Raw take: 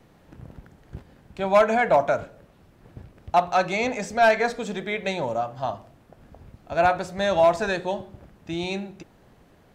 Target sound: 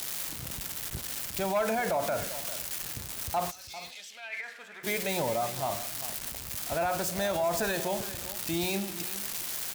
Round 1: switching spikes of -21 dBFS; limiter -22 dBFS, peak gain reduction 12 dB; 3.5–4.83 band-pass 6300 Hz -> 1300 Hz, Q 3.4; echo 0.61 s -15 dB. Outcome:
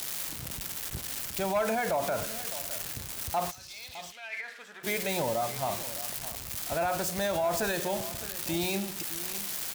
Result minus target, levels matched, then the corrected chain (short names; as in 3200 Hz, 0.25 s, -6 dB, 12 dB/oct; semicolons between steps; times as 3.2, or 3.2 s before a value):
echo 0.213 s late
switching spikes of -21 dBFS; limiter -22 dBFS, peak gain reduction 12 dB; 3.5–4.83 band-pass 6300 Hz -> 1300 Hz, Q 3.4; echo 0.397 s -15 dB